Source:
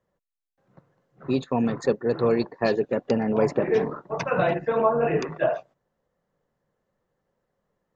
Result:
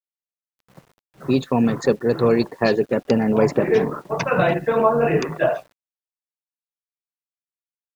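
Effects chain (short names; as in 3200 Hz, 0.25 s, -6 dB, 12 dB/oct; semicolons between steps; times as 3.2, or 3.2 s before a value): dynamic EQ 670 Hz, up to -3 dB, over -29 dBFS, Q 0.73; bit-crush 10-bit; gain +6.5 dB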